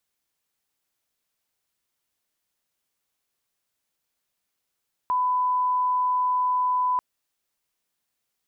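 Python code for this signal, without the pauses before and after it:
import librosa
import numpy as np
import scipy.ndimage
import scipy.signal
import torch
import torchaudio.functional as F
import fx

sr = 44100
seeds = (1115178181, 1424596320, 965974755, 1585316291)

y = fx.lineup_tone(sr, length_s=1.89, level_db=-20.0)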